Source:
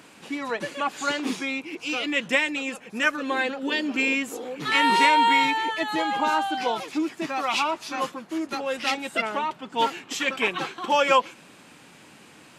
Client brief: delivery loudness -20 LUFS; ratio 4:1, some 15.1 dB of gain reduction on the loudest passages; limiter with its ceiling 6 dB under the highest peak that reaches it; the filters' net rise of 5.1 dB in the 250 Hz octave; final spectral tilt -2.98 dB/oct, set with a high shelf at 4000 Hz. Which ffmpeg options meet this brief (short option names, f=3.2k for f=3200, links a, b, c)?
-af "equalizer=f=250:t=o:g=6,highshelf=f=4k:g=3,acompressor=threshold=-33dB:ratio=4,volume=15.5dB,alimiter=limit=-10.5dB:level=0:latency=1"